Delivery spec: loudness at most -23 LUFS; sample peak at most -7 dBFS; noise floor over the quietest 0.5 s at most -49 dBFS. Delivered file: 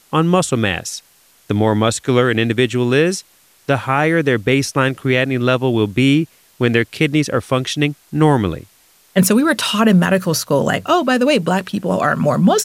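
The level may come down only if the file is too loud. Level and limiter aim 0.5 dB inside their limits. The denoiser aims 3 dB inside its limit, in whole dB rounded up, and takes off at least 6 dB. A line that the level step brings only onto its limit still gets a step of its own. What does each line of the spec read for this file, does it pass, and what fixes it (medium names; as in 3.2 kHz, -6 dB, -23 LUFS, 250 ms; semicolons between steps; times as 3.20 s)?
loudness -16.0 LUFS: fail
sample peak -2.5 dBFS: fail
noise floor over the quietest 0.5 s -52 dBFS: pass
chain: trim -7.5 dB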